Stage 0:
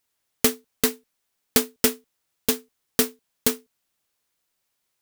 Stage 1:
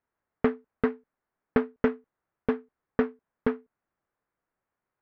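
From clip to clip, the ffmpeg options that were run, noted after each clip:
-af "lowpass=f=1700:w=0.5412,lowpass=f=1700:w=1.3066"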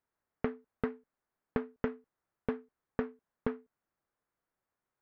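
-af "acompressor=threshold=0.0562:ratio=6,volume=0.668"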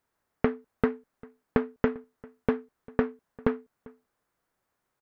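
-filter_complex "[0:a]asplit=2[s0][s1];[s1]adelay=396.5,volume=0.0708,highshelf=f=4000:g=-8.92[s2];[s0][s2]amix=inputs=2:normalize=0,volume=2.66"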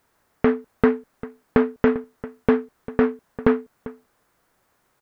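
-af "alimiter=level_in=5.31:limit=0.891:release=50:level=0:latency=1,volume=0.891"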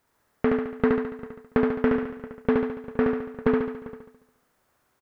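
-af "aecho=1:1:71|142|213|284|355|426|497|568:0.708|0.389|0.214|0.118|0.0648|0.0356|0.0196|0.0108,volume=0.562"

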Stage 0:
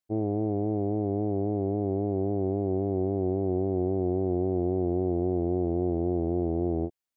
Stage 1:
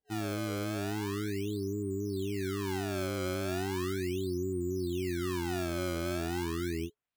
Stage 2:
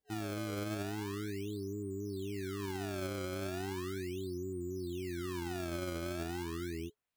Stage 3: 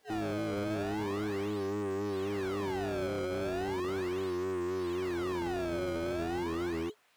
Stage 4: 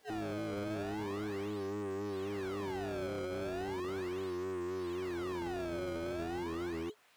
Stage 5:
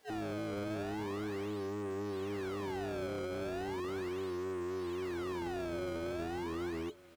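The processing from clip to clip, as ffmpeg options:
-af "afftfilt=real='re*(1-between(b*sr/4096,430,980))':imag='im*(1-between(b*sr/4096,430,980))':win_size=4096:overlap=0.75,superequalizer=8b=0.398:9b=0.562:13b=2.24,acrusher=samples=27:mix=1:aa=0.000001:lfo=1:lforange=43.2:lforate=0.37,volume=0.501"
-af "alimiter=level_in=2.99:limit=0.0631:level=0:latency=1:release=58,volume=0.335,volume=1.12"
-filter_complex "[0:a]asplit=2[s0][s1];[s1]highpass=f=720:p=1,volume=28.2,asoftclip=type=tanh:threshold=0.0237[s2];[s0][s2]amix=inputs=2:normalize=0,lowpass=f=2800:p=1,volume=0.501,volume=1.5"
-af "alimiter=level_in=3.76:limit=0.0631:level=0:latency=1:release=166,volume=0.266,volume=1.26"
-af "aecho=1:1:1165:0.0891"

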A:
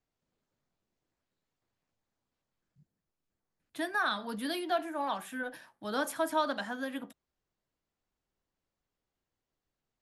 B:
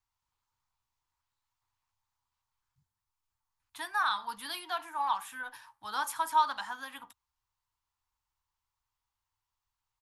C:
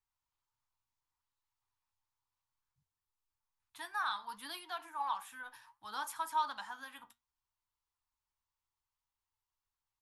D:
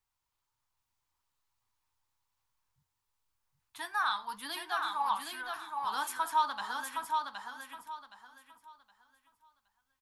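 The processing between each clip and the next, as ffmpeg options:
-af "firequalizer=gain_entry='entry(110,0);entry(160,-18);entry(620,-16);entry(900,8);entry(1600,-2);entry(2600,0);entry(5500,2)':delay=0.05:min_phase=1"
-af "flanger=delay=2.3:depth=6.6:regen=75:speed=0.64:shape=sinusoidal,volume=0.794"
-af "aecho=1:1:768|1536|2304|3072:0.631|0.17|0.046|0.0124,volume=1.78"

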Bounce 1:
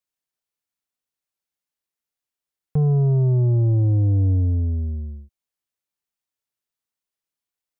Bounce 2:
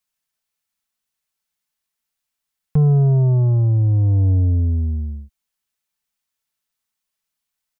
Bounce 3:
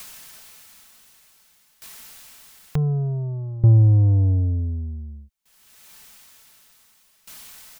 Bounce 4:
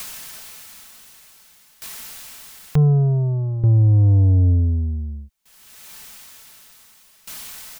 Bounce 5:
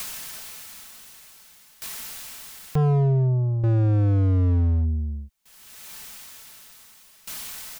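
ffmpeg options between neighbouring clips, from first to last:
-af "equalizer=f=390:w=0.88:g=-8,aecho=1:1:4.6:0.37,volume=2.24"
-af "acompressor=mode=upward:threshold=0.141:ratio=2.5,aeval=exprs='val(0)*pow(10,-21*if(lt(mod(0.55*n/s,1),2*abs(0.55)/1000),1-mod(0.55*n/s,1)/(2*abs(0.55)/1000),(mod(0.55*n/s,1)-2*abs(0.55)/1000)/(1-2*abs(0.55)/1000))/20)':c=same,volume=1.68"
-af "alimiter=limit=0.133:level=0:latency=1:release=18,volume=2.24"
-af "volume=7.94,asoftclip=hard,volume=0.126"

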